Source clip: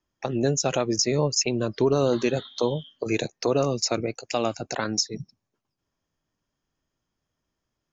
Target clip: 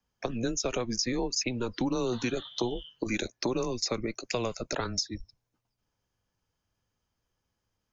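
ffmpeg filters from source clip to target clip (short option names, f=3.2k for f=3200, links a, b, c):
-filter_complex "[0:a]afreqshift=-120,acrossover=split=280|5300[a][b][c];[a]acompressor=threshold=-37dB:ratio=4[d];[b]acompressor=threshold=-29dB:ratio=4[e];[c]acompressor=threshold=-39dB:ratio=4[f];[d][e][f]amix=inputs=3:normalize=0"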